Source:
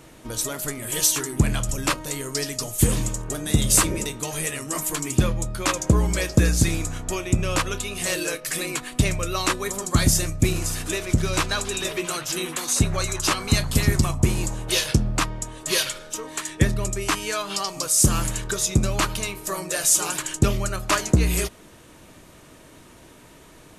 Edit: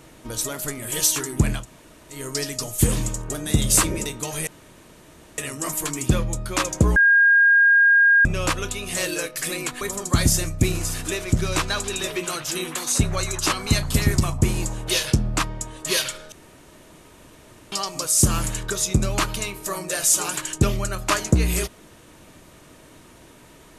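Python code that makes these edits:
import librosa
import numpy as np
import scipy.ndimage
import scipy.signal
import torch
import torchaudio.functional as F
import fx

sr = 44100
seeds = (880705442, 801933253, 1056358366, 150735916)

y = fx.edit(x, sr, fx.room_tone_fill(start_s=1.59, length_s=0.57, crossfade_s=0.16),
    fx.insert_room_tone(at_s=4.47, length_s=0.91),
    fx.bleep(start_s=6.05, length_s=1.29, hz=1620.0, db=-11.5),
    fx.cut(start_s=8.9, length_s=0.72),
    fx.room_tone_fill(start_s=16.13, length_s=1.4), tone=tone)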